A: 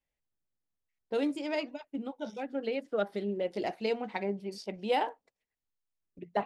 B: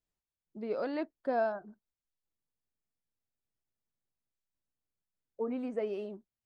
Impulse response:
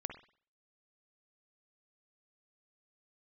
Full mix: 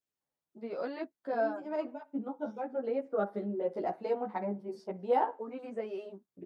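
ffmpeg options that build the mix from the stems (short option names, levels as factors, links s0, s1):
-filter_complex "[0:a]highshelf=f=1800:t=q:w=1.5:g=-13.5,adelay=200,volume=1.12,asplit=2[s0][s1];[s1]volume=0.251[s2];[1:a]volume=1.12,asplit=2[s3][s4];[s4]apad=whole_len=293688[s5];[s0][s5]sidechaincompress=threshold=0.00398:ratio=8:attack=16:release=218[s6];[2:a]atrim=start_sample=2205[s7];[s2][s7]afir=irnorm=-1:irlink=0[s8];[s6][s3][s8]amix=inputs=3:normalize=0,highpass=130,asplit=2[s9][s10];[s10]adelay=11.9,afreqshift=0.93[s11];[s9][s11]amix=inputs=2:normalize=1"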